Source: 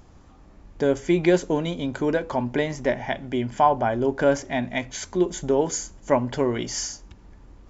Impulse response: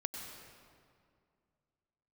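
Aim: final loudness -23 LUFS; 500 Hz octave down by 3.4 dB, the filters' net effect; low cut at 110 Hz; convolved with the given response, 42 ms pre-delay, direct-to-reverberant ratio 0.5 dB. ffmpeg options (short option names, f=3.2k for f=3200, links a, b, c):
-filter_complex "[0:a]highpass=110,equalizer=f=500:t=o:g=-4.5,asplit=2[a][b];[1:a]atrim=start_sample=2205,adelay=42[c];[b][c]afir=irnorm=-1:irlink=0,volume=-1dB[d];[a][d]amix=inputs=2:normalize=0,volume=0.5dB"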